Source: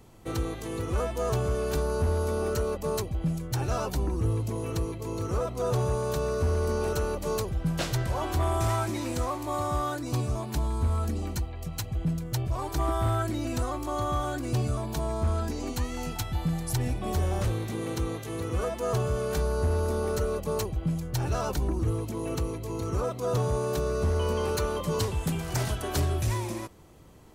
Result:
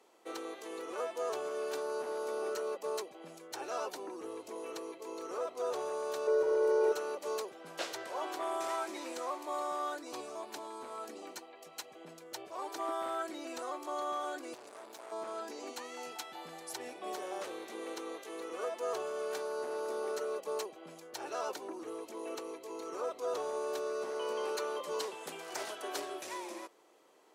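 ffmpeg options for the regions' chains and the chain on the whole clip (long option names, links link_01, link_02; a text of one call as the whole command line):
ffmpeg -i in.wav -filter_complex "[0:a]asettb=1/sr,asplit=3[link_01][link_02][link_03];[link_01]atrim=end=6.274[link_04];[link_02]atrim=start=6.27:end=6.92,asetpts=PTS-STARTPTS,afade=type=in:duration=0.004:curve=qsin,afade=type=out:start_time=0.646:duration=0.004:curve=qsin,tiltshelf=frequency=1100:gain=6,aecho=1:1:2.1:0.88,atrim=end_sample=28665[link_05];[link_03]atrim=start=6.916[link_06];[link_04][link_05]acrossfade=duration=0.004:curve1=hsin:curve2=qsin[link_07];[link_07][link_06]acrossfade=duration=0.004:curve1=qsin:curve2=hsin,asettb=1/sr,asplit=3[link_08][link_09][link_10];[link_08]atrim=end=14.544[link_11];[link_09]atrim=start=14.54:end=15.12,asetpts=PTS-STARTPTS,afade=type=in:duration=0.004:curve=qsin,afade=type=out:start_time=0.576:duration=0.004:curve=qsin,highshelf=frequency=5900:gain=4.5,aeval=exprs='(tanh(70.8*val(0)+0.6)-tanh(0.6))/70.8':channel_layout=same[link_12];[link_10]atrim=start=15.116[link_13];[link_11][link_12]acrossfade=duration=0.004:curve1=hsin:curve2=qsin[link_14];[link_14][link_13]acrossfade=duration=0.004:curve1=qsin:curve2=hsin,highpass=frequency=370:width=0.5412,highpass=frequency=370:width=1.3066,highshelf=frequency=12000:gain=-12,volume=-5.5dB" out.wav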